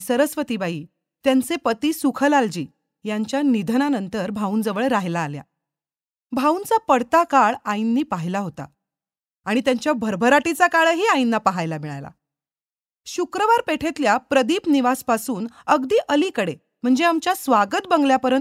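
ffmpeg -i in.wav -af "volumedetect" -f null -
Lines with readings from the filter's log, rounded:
mean_volume: -20.8 dB
max_volume: -2.1 dB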